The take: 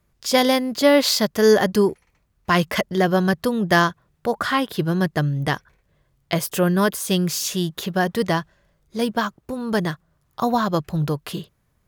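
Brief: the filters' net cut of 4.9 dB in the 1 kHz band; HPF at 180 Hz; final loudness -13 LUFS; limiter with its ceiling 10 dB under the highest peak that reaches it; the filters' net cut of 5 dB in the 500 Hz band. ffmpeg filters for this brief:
-af "highpass=180,equalizer=f=500:t=o:g=-5,equalizer=f=1000:t=o:g=-4.5,volume=4.73,alimiter=limit=0.891:level=0:latency=1"

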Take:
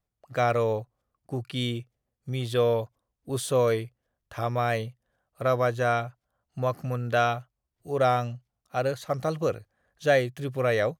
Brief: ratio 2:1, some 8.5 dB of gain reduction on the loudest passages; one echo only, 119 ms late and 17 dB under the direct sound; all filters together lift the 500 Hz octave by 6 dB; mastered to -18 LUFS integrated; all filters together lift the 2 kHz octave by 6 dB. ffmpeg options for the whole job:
-af "equalizer=f=500:t=o:g=6.5,equalizer=f=2000:t=o:g=7.5,acompressor=threshold=0.0501:ratio=2,aecho=1:1:119:0.141,volume=3.35"

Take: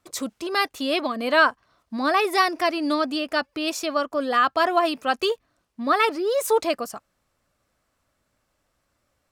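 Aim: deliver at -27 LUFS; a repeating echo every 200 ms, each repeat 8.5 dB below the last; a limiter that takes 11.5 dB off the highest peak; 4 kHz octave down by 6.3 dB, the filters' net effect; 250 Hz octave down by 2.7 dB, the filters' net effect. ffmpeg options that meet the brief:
-af "equalizer=f=250:t=o:g=-3.5,equalizer=f=4000:t=o:g=-8.5,alimiter=limit=0.126:level=0:latency=1,aecho=1:1:200|400|600|800:0.376|0.143|0.0543|0.0206,volume=1.06"

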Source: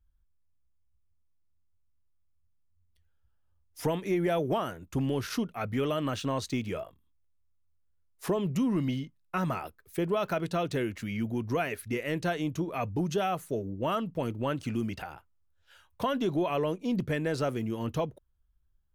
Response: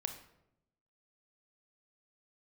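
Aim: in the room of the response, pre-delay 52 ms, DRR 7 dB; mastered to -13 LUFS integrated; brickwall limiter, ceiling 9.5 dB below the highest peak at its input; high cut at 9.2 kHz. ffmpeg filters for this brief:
-filter_complex "[0:a]lowpass=9200,alimiter=level_in=1.41:limit=0.0631:level=0:latency=1,volume=0.708,asplit=2[s0][s1];[1:a]atrim=start_sample=2205,adelay=52[s2];[s1][s2]afir=irnorm=-1:irlink=0,volume=0.447[s3];[s0][s3]amix=inputs=2:normalize=0,volume=13.3"

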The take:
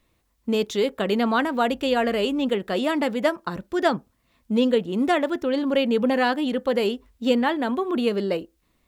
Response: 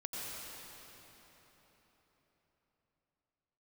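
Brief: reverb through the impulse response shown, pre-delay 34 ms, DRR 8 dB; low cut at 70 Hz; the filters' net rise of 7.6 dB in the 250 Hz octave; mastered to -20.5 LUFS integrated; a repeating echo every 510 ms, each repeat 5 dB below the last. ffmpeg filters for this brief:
-filter_complex "[0:a]highpass=70,equalizer=f=250:t=o:g=8.5,aecho=1:1:510|1020|1530|2040|2550|3060|3570:0.562|0.315|0.176|0.0988|0.0553|0.031|0.0173,asplit=2[s0][s1];[1:a]atrim=start_sample=2205,adelay=34[s2];[s1][s2]afir=irnorm=-1:irlink=0,volume=0.335[s3];[s0][s3]amix=inputs=2:normalize=0,volume=0.668"

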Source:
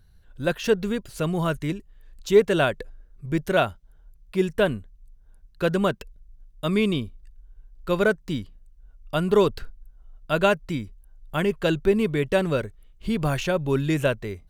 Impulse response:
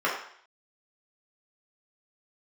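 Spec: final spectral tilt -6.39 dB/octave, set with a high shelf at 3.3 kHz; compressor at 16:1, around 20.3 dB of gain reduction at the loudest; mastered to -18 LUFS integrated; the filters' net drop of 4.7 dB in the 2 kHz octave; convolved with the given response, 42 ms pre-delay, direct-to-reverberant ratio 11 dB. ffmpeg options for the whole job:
-filter_complex "[0:a]equalizer=f=2000:t=o:g=-4.5,highshelf=f=3300:g=-8,acompressor=threshold=0.0282:ratio=16,asplit=2[s0][s1];[1:a]atrim=start_sample=2205,adelay=42[s2];[s1][s2]afir=irnorm=-1:irlink=0,volume=0.0562[s3];[s0][s3]amix=inputs=2:normalize=0,volume=9.44"

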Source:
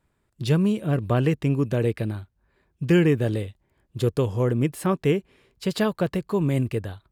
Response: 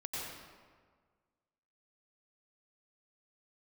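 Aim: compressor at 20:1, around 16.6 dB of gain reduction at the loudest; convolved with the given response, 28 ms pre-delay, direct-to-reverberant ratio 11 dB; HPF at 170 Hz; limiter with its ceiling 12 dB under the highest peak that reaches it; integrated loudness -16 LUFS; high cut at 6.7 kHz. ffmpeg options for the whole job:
-filter_complex "[0:a]highpass=170,lowpass=6700,acompressor=threshold=0.0251:ratio=20,alimiter=level_in=2.51:limit=0.0631:level=0:latency=1,volume=0.398,asplit=2[s0][s1];[1:a]atrim=start_sample=2205,adelay=28[s2];[s1][s2]afir=irnorm=-1:irlink=0,volume=0.224[s3];[s0][s3]amix=inputs=2:normalize=0,volume=21.1"

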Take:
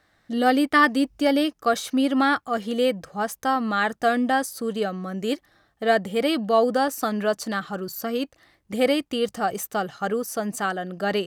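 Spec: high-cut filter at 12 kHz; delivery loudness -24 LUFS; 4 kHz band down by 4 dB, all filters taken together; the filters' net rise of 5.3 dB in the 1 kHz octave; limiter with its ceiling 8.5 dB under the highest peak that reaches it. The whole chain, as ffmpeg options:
-af "lowpass=12000,equalizer=f=1000:t=o:g=8,equalizer=f=4000:t=o:g=-6.5,volume=0.944,alimiter=limit=0.266:level=0:latency=1"

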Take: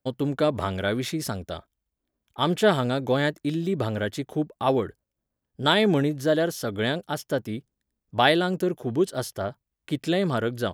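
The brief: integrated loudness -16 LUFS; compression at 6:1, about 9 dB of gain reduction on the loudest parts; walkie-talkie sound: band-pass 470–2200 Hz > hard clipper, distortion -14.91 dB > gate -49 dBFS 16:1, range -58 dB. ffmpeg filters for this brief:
-af "acompressor=threshold=0.0562:ratio=6,highpass=470,lowpass=2200,asoftclip=type=hard:threshold=0.0531,agate=range=0.00126:threshold=0.00355:ratio=16,volume=10"

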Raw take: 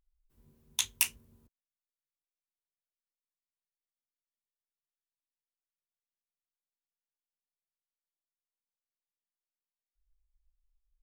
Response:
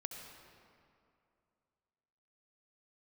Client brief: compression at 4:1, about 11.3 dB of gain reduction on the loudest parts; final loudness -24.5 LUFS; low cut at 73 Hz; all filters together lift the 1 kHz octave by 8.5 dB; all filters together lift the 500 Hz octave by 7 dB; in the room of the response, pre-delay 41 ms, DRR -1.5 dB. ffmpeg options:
-filter_complex "[0:a]highpass=73,equalizer=f=500:t=o:g=7.5,equalizer=f=1000:t=o:g=7.5,acompressor=threshold=0.0112:ratio=4,asplit=2[s0][s1];[1:a]atrim=start_sample=2205,adelay=41[s2];[s1][s2]afir=irnorm=-1:irlink=0,volume=1.5[s3];[s0][s3]amix=inputs=2:normalize=0,volume=6.68"

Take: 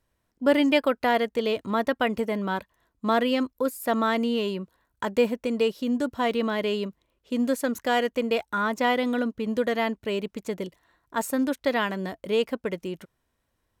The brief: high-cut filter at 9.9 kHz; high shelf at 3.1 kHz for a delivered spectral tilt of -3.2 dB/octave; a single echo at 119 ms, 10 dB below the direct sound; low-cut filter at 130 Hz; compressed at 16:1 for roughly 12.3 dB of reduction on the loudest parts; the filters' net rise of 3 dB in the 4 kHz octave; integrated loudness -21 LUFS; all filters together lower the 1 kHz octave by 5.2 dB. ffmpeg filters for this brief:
-af "highpass=130,lowpass=9900,equalizer=f=1000:t=o:g=-7.5,highshelf=f=3100:g=-4,equalizer=f=4000:t=o:g=8,acompressor=threshold=0.0355:ratio=16,aecho=1:1:119:0.316,volume=4.73"

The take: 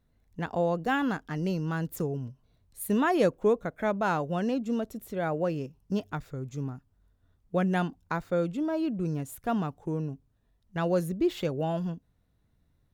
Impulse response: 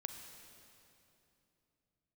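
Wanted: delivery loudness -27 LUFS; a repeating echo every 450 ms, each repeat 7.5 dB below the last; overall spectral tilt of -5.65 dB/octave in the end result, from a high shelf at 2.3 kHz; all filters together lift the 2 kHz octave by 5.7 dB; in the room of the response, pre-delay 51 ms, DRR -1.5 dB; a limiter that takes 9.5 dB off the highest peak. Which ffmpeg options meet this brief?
-filter_complex "[0:a]equalizer=f=2000:t=o:g=5,highshelf=f=2300:g=6,alimiter=limit=0.1:level=0:latency=1,aecho=1:1:450|900|1350|1800|2250:0.422|0.177|0.0744|0.0312|0.0131,asplit=2[s0][s1];[1:a]atrim=start_sample=2205,adelay=51[s2];[s1][s2]afir=irnorm=-1:irlink=0,volume=1.5[s3];[s0][s3]amix=inputs=2:normalize=0"

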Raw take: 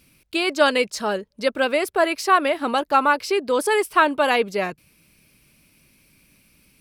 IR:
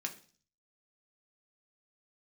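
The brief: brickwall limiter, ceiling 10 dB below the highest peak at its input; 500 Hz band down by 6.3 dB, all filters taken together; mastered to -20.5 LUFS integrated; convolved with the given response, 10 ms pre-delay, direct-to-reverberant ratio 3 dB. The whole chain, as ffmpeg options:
-filter_complex "[0:a]equalizer=f=500:t=o:g=-8,alimiter=limit=0.178:level=0:latency=1,asplit=2[s0][s1];[1:a]atrim=start_sample=2205,adelay=10[s2];[s1][s2]afir=irnorm=-1:irlink=0,volume=0.668[s3];[s0][s3]amix=inputs=2:normalize=0,volume=1.58"

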